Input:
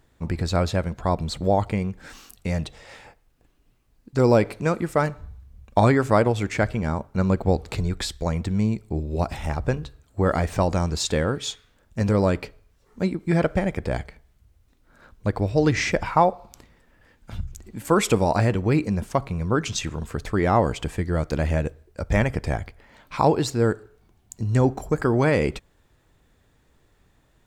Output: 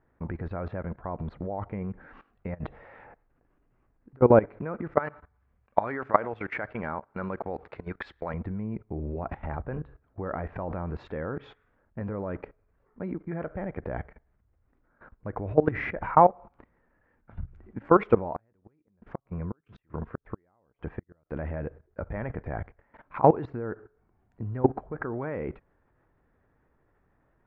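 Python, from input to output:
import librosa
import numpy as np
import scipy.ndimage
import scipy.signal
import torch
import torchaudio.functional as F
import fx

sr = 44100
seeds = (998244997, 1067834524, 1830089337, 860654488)

y = fx.over_compress(x, sr, threshold_db=-30.0, ratio=-0.5, at=(2.54, 4.21))
y = fx.tilt_eq(y, sr, slope=3.5, at=(4.99, 8.34))
y = fx.gate_flip(y, sr, shuts_db=-16.0, range_db=-41, at=(18.35, 21.31))
y = scipy.signal.sosfilt(scipy.signal.butter(4, 1800.0, 'lowpass', fs=sr, output='sos'), y)
y = fx.low_shelf(y, sr, hz=190.0, db=-5.5)
y = fx.level_steps(y, sr, step_db=18)
y = y * 10.0 ** (3.5 / 20.0)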